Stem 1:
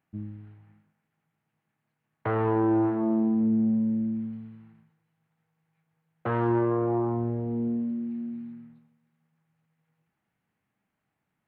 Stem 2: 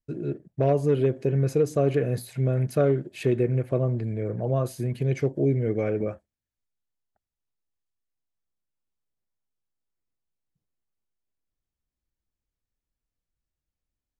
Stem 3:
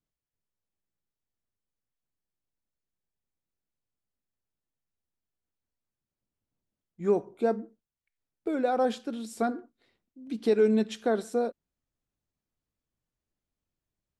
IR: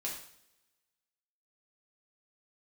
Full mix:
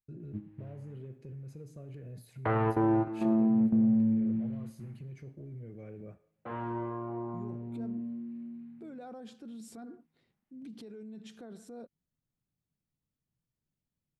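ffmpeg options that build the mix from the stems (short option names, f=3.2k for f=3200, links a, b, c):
-filter_complex "[0:a]adelay=200,volume=-2.5dB,asplit=2[a][b];[b]volume=-8.5dB[c];[1:a]acompressor=threshold=-29dB:ratio=5,volume=-17dB,asplit=3[d][e][f];[e]volume=-9.5dB[g];[2:a]acompressor=threshold=-35dB:ratio=3,adelay=350,volume=-7dB[h];[f]apad=whole_len=519204[i];[a][i]sidechaingate=range=-33dB:threshold=-54dB:ratio=16:detection=peak[j];[d][h]amix=inputs=2:normalize=0,equalizer=f=150:t=o:w=1.4:g=14,alimiter=level_in=16dB:limit=-24dB:level=0:latency=1:release=20,volume=-16dB,volume=0dB[k];[3:a]atrim=start_sample=2205[l];[c][g]amix=inputs=2:normalize=0[m];[m][l]afir=irnorm=-1:irlink=0[n];[j][k][n]amix=inputs=3:normalize=0"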